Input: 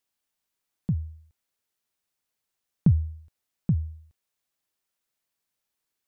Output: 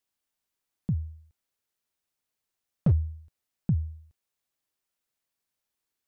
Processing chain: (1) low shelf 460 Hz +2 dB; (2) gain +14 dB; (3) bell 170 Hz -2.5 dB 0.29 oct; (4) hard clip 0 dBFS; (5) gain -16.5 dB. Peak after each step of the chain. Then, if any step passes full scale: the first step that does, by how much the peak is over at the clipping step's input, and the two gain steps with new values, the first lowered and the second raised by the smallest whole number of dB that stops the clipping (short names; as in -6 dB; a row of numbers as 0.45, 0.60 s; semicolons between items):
-8.0, +6.0, +5.5, 0.0, -16.5 dBFS; step 2, 5.5 dB; step 2 +8 dB, step 5 -10.5 dB